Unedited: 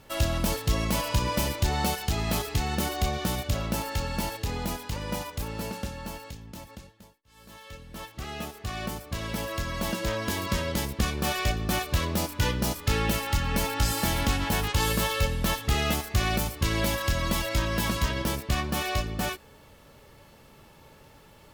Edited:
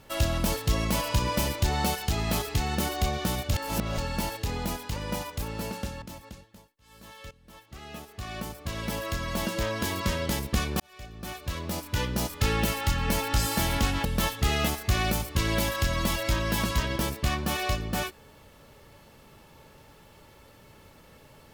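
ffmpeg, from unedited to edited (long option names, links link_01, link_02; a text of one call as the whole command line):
ffmpeg -i in.wav -filter_complex "[0:a]asplit=7[link_01][link_02][link_03][link_04][link_05][link_06][link_07];[link_01]atrim=end=3.542[link_08];[link_02]atrim=start=3.538:end=3.982,asetpts=PTS-STARTPTS,areverse[link_09];[link_03]atrim=start=3.978:end=6.022[link_10];[link_04]atrim=start=6.478:end=7.77,asetpts=PTS-STARTPTS,afade=type=out:start_time=1.288:duration=0.004:curve=hsin:silence=0.188365[link_11];[link_05]atrim=start=7.77:end=11.26,asetpts=PTS-STARTPTS,afade=type=in:duration=1.6:silence=0.188365,afade=type=out:start_time=3.486:duration=0.004:curve=hsin[link_12];[link_06]atrim=start=11.26:end=14.512,asetpts=PTS-STARTPTS,afade=type=in:duration=1.62[link_13];[link_07]atrim=start=15.308[link_14];[link_08][link_09]acrossfade=duration=0.004:curve1=hsin:curve2=hsin[link_15];[link_15][link_10]acrossfade=duration=0.004:curve1=hsin:curve2=hsin[link_16];[link_11][link_12][link_13]concat=n=3:v=0:a=1[link_17];[link_16][link_17]acrossfade=duration=0.004:curve1=hsin:curve2=hsin[link_18];[link_18][link_14]acrossfade=duration=0.004:curve1=hsin:curve2=hsin" out.wav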